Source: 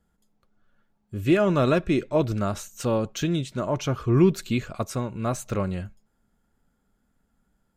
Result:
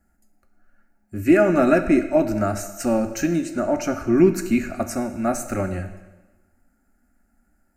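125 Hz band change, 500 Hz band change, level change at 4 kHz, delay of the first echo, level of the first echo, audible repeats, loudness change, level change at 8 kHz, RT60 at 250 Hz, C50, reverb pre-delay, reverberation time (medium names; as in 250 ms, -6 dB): -3.5 dB, +4.5 dB, -4.5 dB, no echo, no echo, no echo, +4.0 dB, +5.0 dB, 1.2 s, 10.5 dB, 5 ms, 1.2 s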